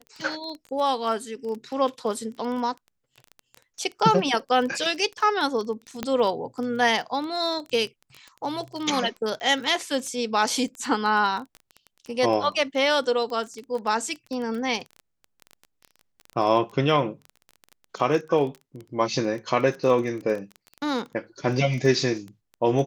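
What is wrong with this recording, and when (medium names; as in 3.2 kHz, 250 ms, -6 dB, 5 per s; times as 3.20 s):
crackle 16 per s -30 dBFS
6.03 s: pop -12 dBFS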